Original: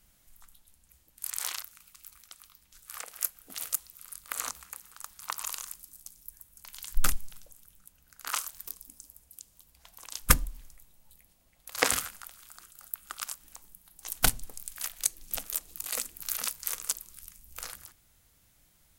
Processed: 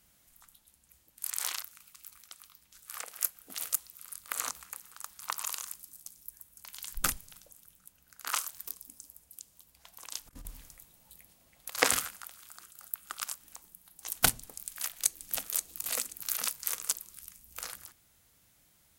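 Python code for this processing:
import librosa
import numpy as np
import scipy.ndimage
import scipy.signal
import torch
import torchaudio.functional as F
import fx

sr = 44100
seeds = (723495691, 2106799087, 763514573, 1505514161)

y = fx.over_compress(x, sr, threshold_db=-34.0, ratio=-0.5, at=(10.25, 11.69), fade=0.02)
y = fx.echo_throw(y, sr, start_s=14.61, length_s=0.81, ms=530, feedback_pct=20, wet_db=-7.0)
y = fx.highpass(y, sr, hz=100.0, slope=6)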